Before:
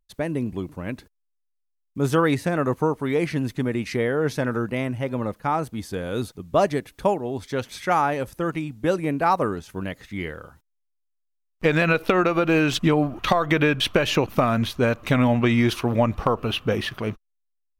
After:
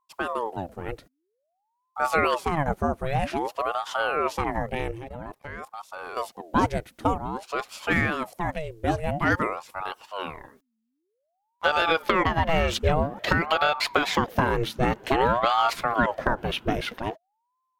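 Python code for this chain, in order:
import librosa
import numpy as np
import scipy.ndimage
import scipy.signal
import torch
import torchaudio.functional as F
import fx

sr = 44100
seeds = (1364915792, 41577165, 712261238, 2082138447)

y = fx.level_steps(x, sr, step_db=17, at=(4.91, 6.17))
y = fx.ring_lfo(y, sr, carrier_hz=630.0, swing_pct=65, hz=0.51)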